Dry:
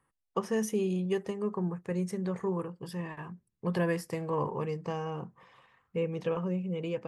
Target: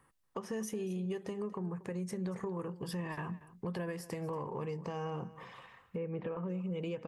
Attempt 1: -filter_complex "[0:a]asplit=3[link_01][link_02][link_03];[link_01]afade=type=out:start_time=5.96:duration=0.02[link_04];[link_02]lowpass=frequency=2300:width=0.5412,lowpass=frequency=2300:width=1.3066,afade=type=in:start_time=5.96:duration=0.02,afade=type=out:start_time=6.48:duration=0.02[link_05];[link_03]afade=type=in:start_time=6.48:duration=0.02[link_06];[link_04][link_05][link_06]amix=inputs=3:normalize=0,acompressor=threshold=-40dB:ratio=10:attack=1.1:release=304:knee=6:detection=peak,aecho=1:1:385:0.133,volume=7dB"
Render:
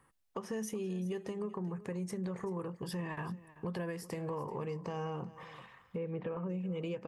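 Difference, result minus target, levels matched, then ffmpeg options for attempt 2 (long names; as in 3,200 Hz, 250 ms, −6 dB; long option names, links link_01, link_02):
echo 150 ms late
-filter_complex "[0:a]asplit=3[link_01][link_02][link_03];[link_01]afade=type=out:start_time=5.96:duration=0.02[link_04];[link_02]lowpass=frequency=2300:width=0.5412,lowpass=frequency=2300:width=1.3066,afade=type=in:start_time=5.96:duration=0.02,afade=type=out:start_time=6.48:duration=0.02[link_05];[link_03]afade=type=in:start_time=6.48:duration=0.02[link_06];[link_04][link_05][link_06]amix=inputs=3:normalize=0,acompressor=threshold=-40dB:ratio=10:attack=1.1:release=304:knee=6:detection=peak,aecho=1:1:235:0.133,volume=7dB"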